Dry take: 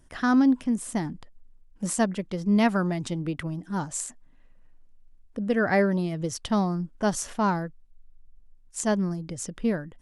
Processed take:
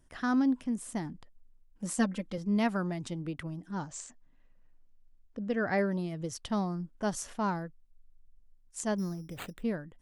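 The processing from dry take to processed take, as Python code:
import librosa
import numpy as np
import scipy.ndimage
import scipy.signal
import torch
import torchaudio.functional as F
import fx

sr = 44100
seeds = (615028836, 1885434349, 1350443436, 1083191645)

y = fx.comb(x, sr, ms=3.8, depth=0.92, at=(1.98, 2.38))
y = fx.steep_lowpass(y, sr, hz=7400.0, slope=36, at=(3.71, 5.78))
y = fx.resample_bad(y, sr, factor=8, down='none', up='hold', at=(8.98, 9.63))
y = F.gain(torch.from_numpy(y), -7.0).numpy()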